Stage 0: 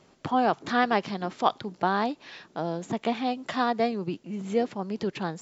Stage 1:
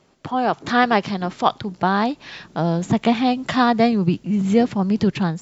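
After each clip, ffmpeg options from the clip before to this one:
-af "asubboost=boost=4.5:cutoff=190,dynaudnorm=f=200:g=5:m=2.99"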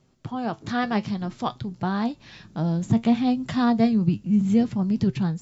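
-af "flanger=delay=7.7:depth=2.1:regen=67:speed=0.59:shape=triangular,bass=f=250:g=13,treble=f=4000:g=5,volume=0.473"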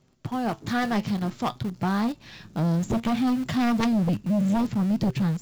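-filter_complex "[0:a]aeval=exprs='0.422*(cos(1*acos(clip(val(0)/0.422,-1,1)))-cos(1*PI/2))+0.211*(cos(3*acos(clip(val(0)/0.422,-1,1)))-cos(3*PI/2))+0.211*(cos(5*acos(clip(val(0)/0.422,-1,1)))-cos(5*PI/2))':c=same,asplit=2[s0][s1];[s1]acrusher=bits=5:dc=4:mix=0:aa=0.000001,volume=0.376[s2];[s0][s2]amix=inputs=2:normalize=0,volume=0.473"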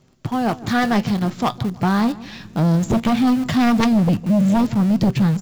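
-filter_complex "[0:a]asplit=2[s0][s1];[s1]adelay=157,lowpass=f=1900:p=1,volume=0.119,asplit=2[s2][s3];[s3]adelay=157,lowpass=f=1900:p=1,volume=0.42,asplit=2[s4][s5];[s5]adelay=157,lowpass=f=1900:p=1,volume=0.42[s6];[s0][s2][s4][s6]amix=inputs=4:normalize=0,volume=2.24"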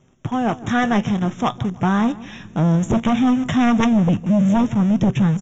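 -af "aresample=16000,aresample=44100,asuperstop=centerf=4500:order=8:qfactor=2.5"

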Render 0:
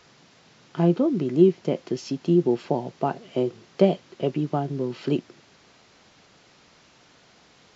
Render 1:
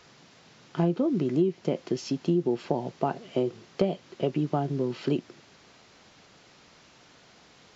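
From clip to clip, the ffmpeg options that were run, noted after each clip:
-af "acompressor=threshold=0.0891:ratio=5"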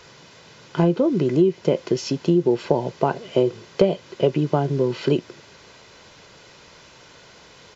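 -af "aecho=1:1:2:0.39,volume=2.37"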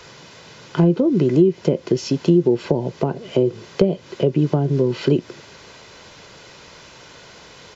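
-filter_complex "[0:a]acrossover=split=430[s0][s1];[s1]acompressor=threshold=0.0282:ratio=10[s2];[s0][s2]amix=inputs=2:normalize=0,volume=1.68"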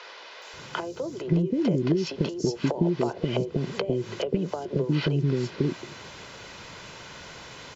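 -filter_complex "[0:a]acompressor=threshold=0.0891:ratio=6,acrossover=split=440|5200[s0][s1][s2];[s2]adelay=420[s3];[s0]adelay=530[s4];[s4][s1][s3]amix=inputs=3:normalize=0,volume=1.19"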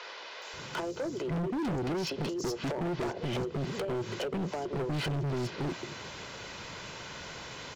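-af "volume=31.6,asoftclip=hard,volume=0.0316"

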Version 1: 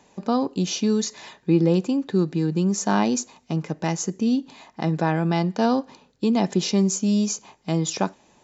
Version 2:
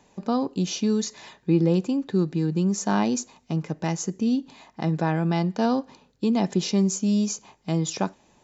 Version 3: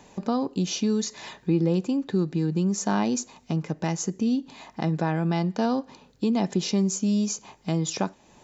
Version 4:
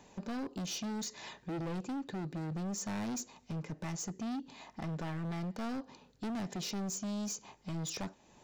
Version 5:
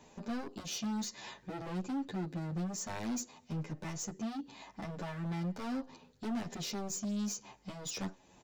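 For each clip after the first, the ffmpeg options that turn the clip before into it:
-af "lowshelf=f=120:g=6.5,volume=0.708"
-af "acompressor=threshold=0.00708:ratio=1.5,volume=2.24"
-af "volume=26.6,asoftclip=hard,volume=0.0376,volume=0.447"
-filter_complex "[0:a]asplit=2[s0][s1];[s1]adelay=9.5,afreqshift=-0.32[s2];[s0][s2]amix=inputs=2:normalize=1,volume=1.41"

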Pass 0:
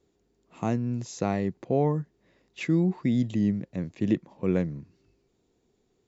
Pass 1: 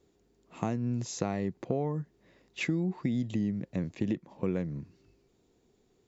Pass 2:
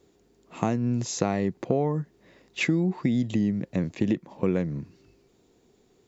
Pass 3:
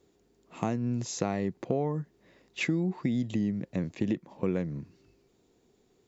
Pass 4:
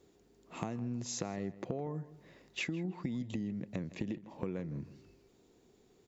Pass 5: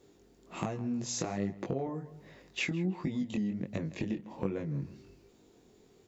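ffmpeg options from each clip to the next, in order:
-af "acompressor=threshold=0.0355:ratio=6,volume=1.26"
-af "lowshelf=f=110:g=-5,volume=2.24"
-af "asoftclip=type=hard:threshold=0.316,volume=0.596"
-filter_complex "[0:a]acompressor=threshold=0.0141:ratio=4,asplit=2[s0][s1];[s1]adelay=161,lowpass=f=2900:p=1,volume=0.158,asplit=2[s2][s3];[s3]adelay=161,lowpass=f=2900:p=1,volume=0.3,asplit=2[s4][s5];[s5]adelay=161,lowpass=f=2900:p=1,volume=0.3[s6];[s0][s2][s4][s6]amix=inputs=4:normalize=0,volume=1.12"
-af "flanger=delay=19:depth=4.7:speed=1.3,volume=2.24"

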